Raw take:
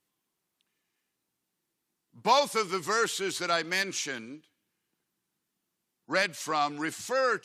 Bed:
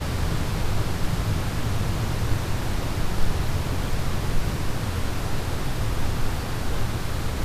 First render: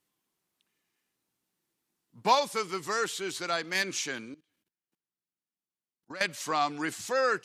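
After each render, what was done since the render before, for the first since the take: 2.35–3.75 s: gain -3 dB; 4.34–6.21 s: level held to a coarse grid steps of 20 dB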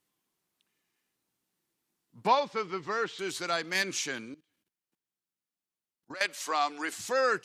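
2.27–3.19 s: distance through air 200 m; 6.14–6.93 s: Bessel high-pass 400 Hz, order 4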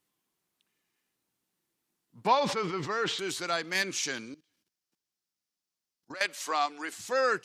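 2.34–3.44 s: decay stretcher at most 51 dB/s; 4.03–6.12 s: peaking EQ 5.3 kHz +9 dB; 6.66–7.12 s: gain -3 dB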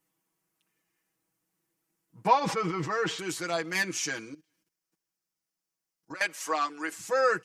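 peaking EQ 3.8 kHz -8 dB 0.71 oct; comb 6.2 ms, depth 76%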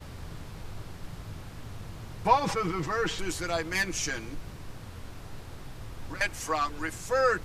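add bed -16.5 dB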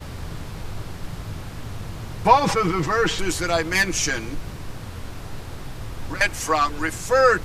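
trim +8.5 dB; peak limiter -3 dBFS, peak gain reduction 1.5 dB

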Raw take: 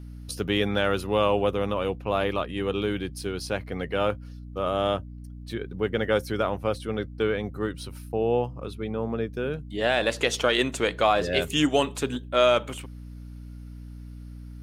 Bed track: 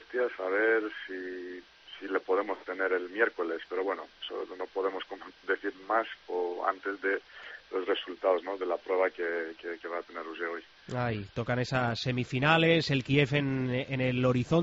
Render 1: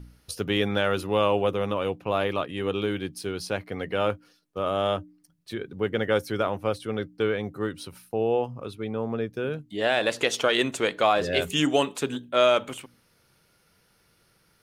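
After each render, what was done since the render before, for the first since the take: de-hum 60 Hz, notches 5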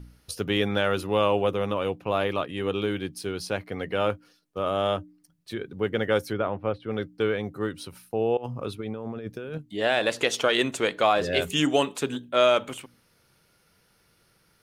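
6.33–6.91 s: distance through air 380 m; 8.37–9.58 s: compressor with a negative ratio -34 dBFS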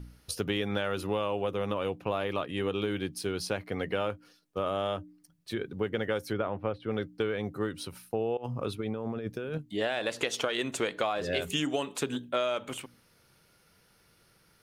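compression 10:1, threshold -26 dBFS, peak gain reduction 11 dB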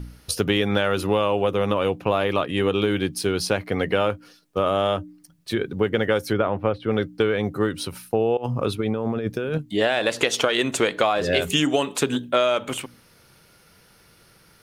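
trim +9.5 dB

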